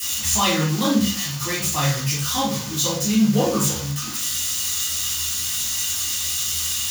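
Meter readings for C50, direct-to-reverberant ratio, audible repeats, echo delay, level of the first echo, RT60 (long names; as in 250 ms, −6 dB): 3.0 dB, −10.5 dB, no echo audible, no echo audible, no echo audible, 0.45 s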